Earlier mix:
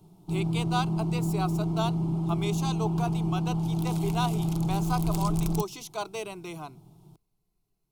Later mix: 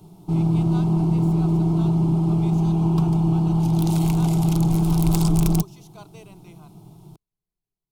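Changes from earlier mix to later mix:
speech −12.0 dB
background +8.5 dB

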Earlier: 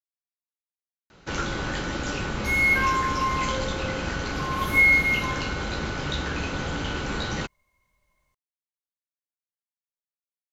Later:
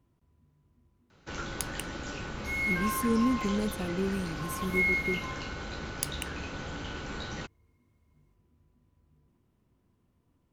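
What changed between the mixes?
speech: unmuted
first sound −9.0 dB
second sound −10.0 dB

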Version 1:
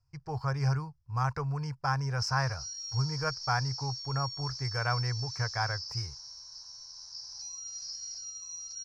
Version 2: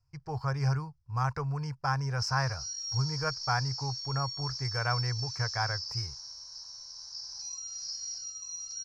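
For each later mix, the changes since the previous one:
reverb: on, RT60 0.35 s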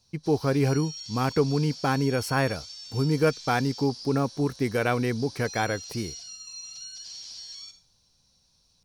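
background: entry −1.95 s
master: remove drawn EQ curve 130 Hz 0 dB, 210 Hz −29 dB, 370 Hz −21 dB, 1,000 Hz 0 dB, 1,700 Hz −4 dB, 3,500 Hz −21 dB, 5,200 Hz +8 dB, 10,000 Hz −23 dB

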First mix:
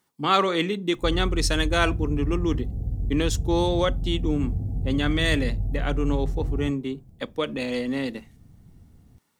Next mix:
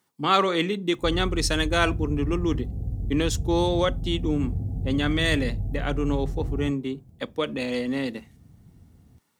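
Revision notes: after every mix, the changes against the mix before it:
master: add high-pass filter 48 Hz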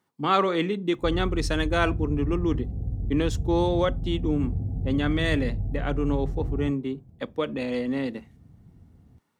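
master: add high-shelf EQ 3,100 Hz −10.5 dB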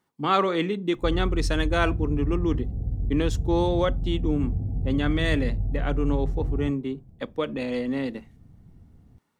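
master: remove high-pass filter 48 Hz

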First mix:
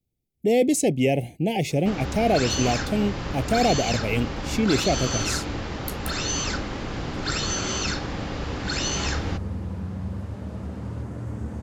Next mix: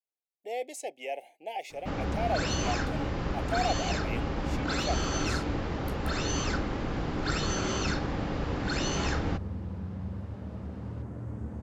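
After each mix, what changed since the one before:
speech: add four-pole ladder high-pass 620 Hz, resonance 30%
second sound −5.5 dB
master: add high-shelf EQ 2,400 Hz −10 dB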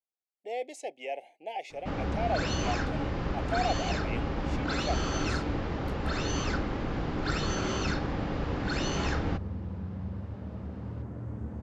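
master: add high-frequency loss of the air 63 metres

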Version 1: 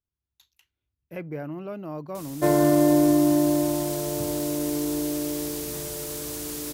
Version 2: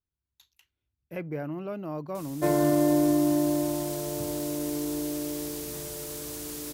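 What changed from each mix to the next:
background −4.0 dB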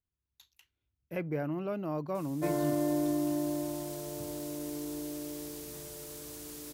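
background −7.5 dB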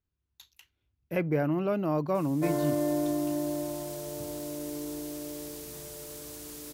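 speech +6.5 dB
reverb: on, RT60 0.45 s

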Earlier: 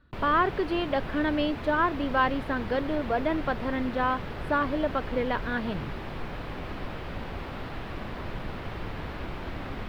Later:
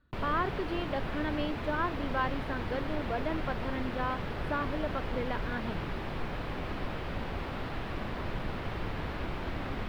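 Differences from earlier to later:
speech −7.5 dB
background: add parametric band 14,000 Hz −3 dB 0.22 octaves

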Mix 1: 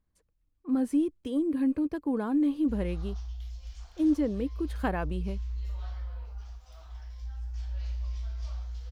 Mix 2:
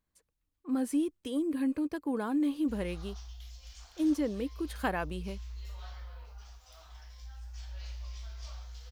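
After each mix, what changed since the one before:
master: add spectral tilt +2 dB per octave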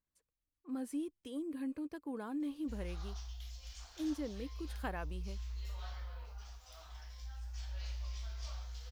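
speech −9.5 dB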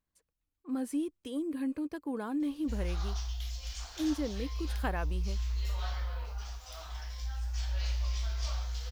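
speech +6.0 dB
background +9.5 dB

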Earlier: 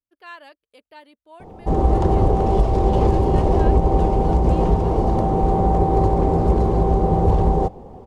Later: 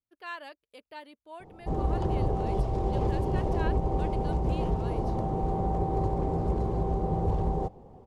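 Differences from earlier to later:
background −11.5 dB
master: add parametric band 130 Hz +7 dB 0.36 octaves

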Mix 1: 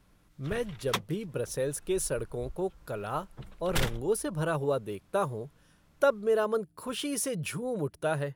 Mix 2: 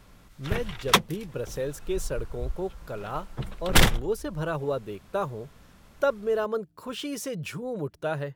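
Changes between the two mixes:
speech: add parametric band 10,000 Hz −14.5 dB 0.26 octaves
background +11.5 dB

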